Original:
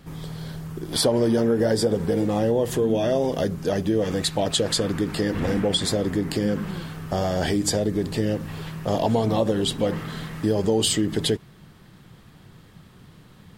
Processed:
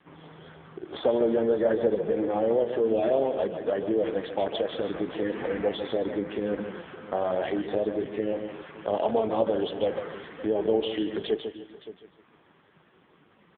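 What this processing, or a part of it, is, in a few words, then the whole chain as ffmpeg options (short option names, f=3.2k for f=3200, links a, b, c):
satellite phone: -af "highpass=350,lowpass=3k,aecho=1:1:149|298|447|596:0.398|0.123|0.0383|0.0119,aecho=1:1:571:0.168" -ar 8000 -c:a libopencore_amrnb -b:a 5150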